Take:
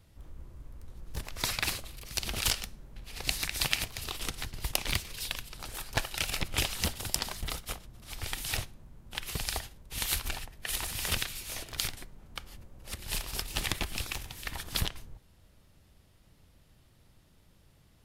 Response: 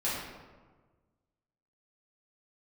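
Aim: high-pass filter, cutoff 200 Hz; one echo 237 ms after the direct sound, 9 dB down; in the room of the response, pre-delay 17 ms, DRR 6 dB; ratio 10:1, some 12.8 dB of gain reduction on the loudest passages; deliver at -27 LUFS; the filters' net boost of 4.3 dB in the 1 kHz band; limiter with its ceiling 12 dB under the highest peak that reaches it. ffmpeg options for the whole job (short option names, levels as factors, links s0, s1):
-filter_complex "[0:a]highpass=200,equalizer=f=1000:t=o:g=5.5,acompressor=threshold=0.0126:ratio=10,alimiter=level_in=1.78:limit=0.0631:level=0:latency=1,volume=0.562,aecho=1:1:237:0.355,asplit=2[s0][s1];[1:a]atrim=start_sample=2205,adelay=17[s2];[s1][s2]afir=irnorm=-1:irlink=0,volume=0.2[s3];[s0][s3]amix=inputs=2:normalize=0,volume=6.31"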